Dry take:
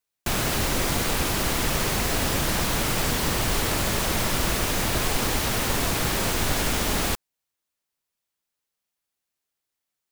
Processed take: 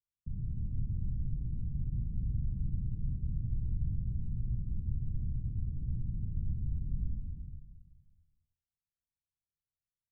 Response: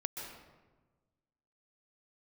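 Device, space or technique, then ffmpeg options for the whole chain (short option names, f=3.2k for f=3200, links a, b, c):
club heard from the street: -filter_complex "[0:a]alimiter=limit=-19dB:level=0:latency=1:release=212,lowpass=f=150:w=0.5412,lowpass=f=150:w=1.3066[a];[1:a]atrim=start_sample=2205[b];[a][b]afir=irnorm=-1:irlink=0"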